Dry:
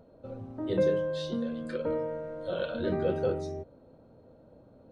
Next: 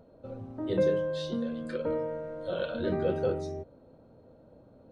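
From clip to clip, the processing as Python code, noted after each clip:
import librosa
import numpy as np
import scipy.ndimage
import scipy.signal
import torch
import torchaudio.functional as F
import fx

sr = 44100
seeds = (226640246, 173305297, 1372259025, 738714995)

y = x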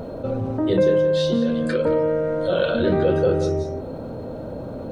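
y = x + 10.0 ** (-12.0 / 20.0) * np.pad(x, (int(174 * sr / 1000.0), 0))[:len(x)]
y = fx.env_flatten(y, sr, amount_pct=50)
y = y * librosa.db_to_amplitude(7.0)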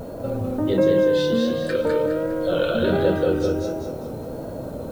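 y = fx.dmg_noise_colour(x, sr, seeds[0], colour='blue', level_db=-55.0)
y = fx.echo_feedback(y, sr, ms=203, feedback_pct=39, wet_db=-3.5)
y = fx.vibrato(y, sr, rate_hz=1.4, depth_cents=43.0)
y = y * librosa.db_to_amplitude(-1.5)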